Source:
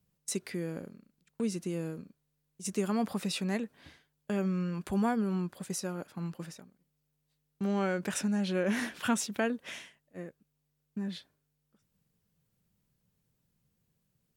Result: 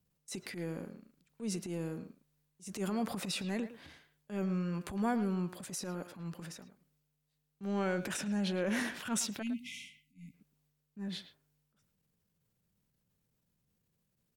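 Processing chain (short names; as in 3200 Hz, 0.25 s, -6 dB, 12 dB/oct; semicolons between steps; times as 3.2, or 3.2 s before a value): transient shaper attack -12 dB, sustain +5 dB; spectral delete 9.42–10.34, 280–2000 Hz; speakerphone echo 0.11 s, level -11 dB; gain -2.5 dB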